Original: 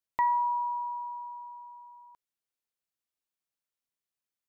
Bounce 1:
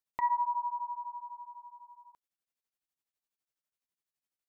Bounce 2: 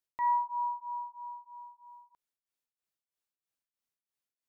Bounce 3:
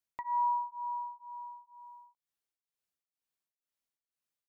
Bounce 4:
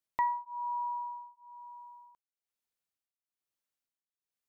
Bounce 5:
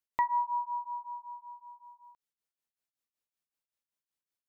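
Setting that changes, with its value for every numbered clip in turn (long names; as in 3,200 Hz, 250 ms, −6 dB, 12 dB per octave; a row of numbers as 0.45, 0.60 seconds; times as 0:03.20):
tremolo along a rectified sine, nulls at: 12, 3.1, 2.1, 1.1, 5.3 Hertz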